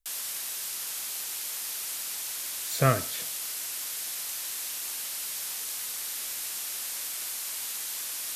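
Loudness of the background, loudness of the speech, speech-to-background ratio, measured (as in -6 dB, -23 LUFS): -32.0 LUFS, -27.5 LUFS, 4.5 dB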